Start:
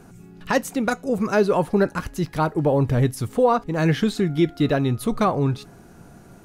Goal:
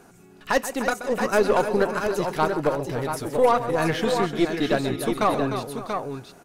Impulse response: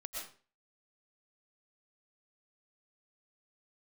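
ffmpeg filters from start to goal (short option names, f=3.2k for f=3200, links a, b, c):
-filter_complex "[0:a]bass=f=250:g=-12,treble=f=4k:g=0,asettb=1/sr,asplit=3[a][b][c];[a]atrim=end=2.694[d];[b]atrim=start=2.69:end=3.29,asetpts=PTS-STARTPTS,afade=t=in:d=0.004:c=qsin,afade=t=out:st=0.596:d=0.004:c=qsin,acompressor=threshold=-25dB:ratio=6[e];[c]atrim=start=3.286[f];[d][e]acrossfade=d=0.004:c1=hsin:c2=qsin[g];[g][f]acrossfade=d=0.004:c1=qsin:c2=hsin,aecho=1:1:130|301|561|685:0.237|0.316|0.126|0.473,aeval=exprs='0.316*(cos(1*acos(clip(val(0)/0.316,-1,1)))-cos(1*PI/2))+0.0282*(cos(4*acos(clip(val(0)/0.316,-1,1)))-cos(4*PI/2))':c=same"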